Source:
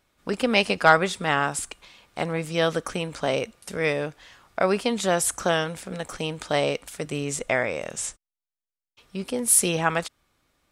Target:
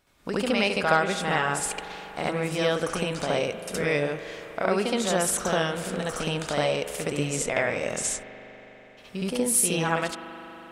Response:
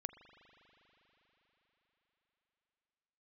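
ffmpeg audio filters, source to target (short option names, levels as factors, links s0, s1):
-filter_complex "[0:a]acompressor=threshold=0.0282:ratio=2,asplit=2[s0][s1];[1:a]atrim=start_sample=2205,adelay=69[s2];[s1][s2]afir=irnorm=-1:irlink=0,volume=2.37[s3];[s0][s3]amix=inputs=2:normalize=0"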